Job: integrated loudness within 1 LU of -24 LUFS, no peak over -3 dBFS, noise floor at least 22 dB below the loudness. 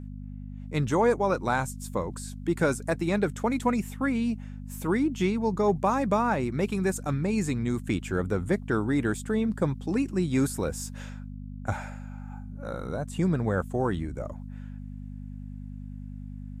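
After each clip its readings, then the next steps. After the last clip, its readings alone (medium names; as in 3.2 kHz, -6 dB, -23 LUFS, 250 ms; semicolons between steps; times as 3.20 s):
hum 50 Hz; highest harmonic 250 Hz; hum level -36 dBFS; loudness -28.0 LUFS; peak level -12.5 dBFS; loudness target -24.0 LUFS
-> de-hum 50 Hz, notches 5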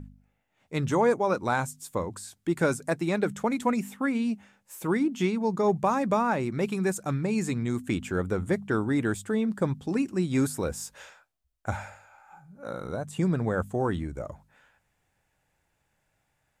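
hum not found; loudness -28.5 LUFS; peak level -12.5 dBFS; loudness target -24.0 LUFS
-> trim +4.5 dB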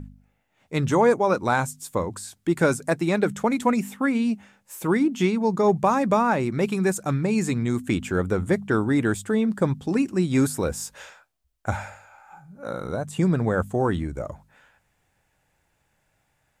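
loudness -24.0 LUFS; peak level -8.0 dBFS; noise floor -71 dBFS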